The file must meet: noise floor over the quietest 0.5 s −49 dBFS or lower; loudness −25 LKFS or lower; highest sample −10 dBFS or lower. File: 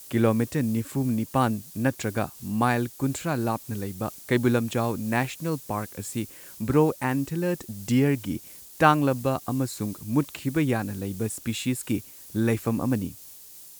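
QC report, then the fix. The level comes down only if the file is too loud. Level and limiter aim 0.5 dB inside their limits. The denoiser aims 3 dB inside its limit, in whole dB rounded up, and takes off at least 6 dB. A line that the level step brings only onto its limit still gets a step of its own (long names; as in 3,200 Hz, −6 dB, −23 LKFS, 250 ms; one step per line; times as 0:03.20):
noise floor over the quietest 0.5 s −46 dBFS: out of spec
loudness −26.5 LKFS: in spec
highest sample −5.5 dBFS: out of spec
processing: broadband denoise 6 dB, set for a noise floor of −46 dBFS
brickwall limiter −10.5 dBFS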